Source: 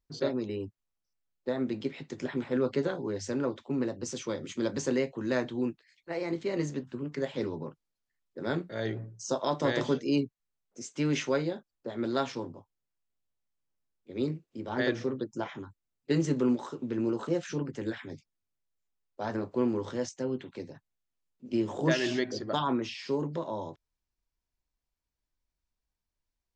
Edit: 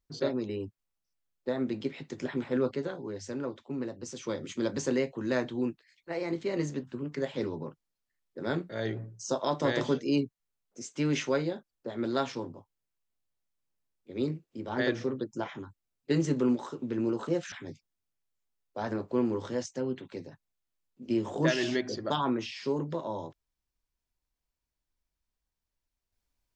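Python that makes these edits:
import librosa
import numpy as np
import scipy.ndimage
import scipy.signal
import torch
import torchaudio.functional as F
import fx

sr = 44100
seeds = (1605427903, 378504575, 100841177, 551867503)

y = fx.edit(x, sr, fx.clip_gain(start_s=2.71, length_s=1.52, db=-4.5),
    fx.cut(start_s=17.52, length_s=0.43), tone=tone)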